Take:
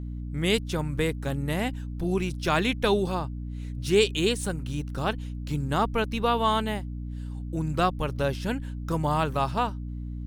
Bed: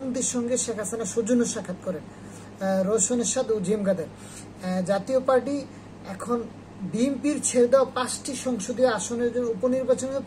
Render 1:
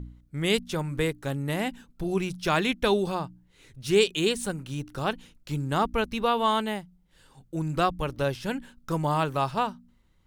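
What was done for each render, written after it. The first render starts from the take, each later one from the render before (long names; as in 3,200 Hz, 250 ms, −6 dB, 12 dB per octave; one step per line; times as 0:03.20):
hum removal 60 Hz, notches 5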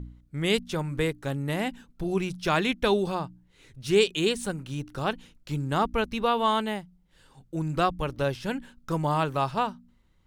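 high-shelf EQ 8,900 Hz −5 dB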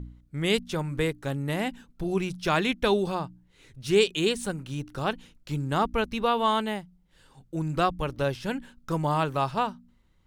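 no processing that can be heard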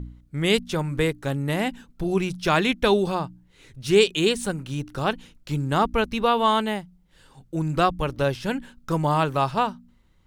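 level +4 dB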